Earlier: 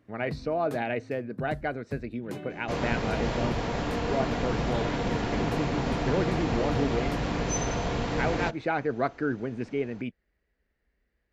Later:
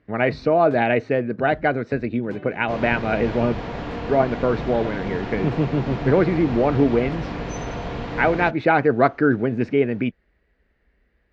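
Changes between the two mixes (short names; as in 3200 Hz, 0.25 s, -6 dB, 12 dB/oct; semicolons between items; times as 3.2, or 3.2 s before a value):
speech +11.0 dB; master: add LPF 3800 Hz 12 dB/oct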